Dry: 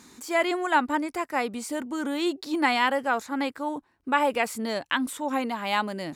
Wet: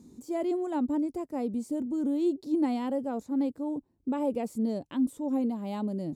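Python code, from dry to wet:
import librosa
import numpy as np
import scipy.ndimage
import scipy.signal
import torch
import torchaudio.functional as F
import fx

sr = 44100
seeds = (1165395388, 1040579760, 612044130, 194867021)

y = fx.curve_eq(x, sr, hz=(240.0, 560.0, 1600.0, 6500.0), db=(0, -8, -30, -17))
y = y * librosa.db_to_amplitude(3.5)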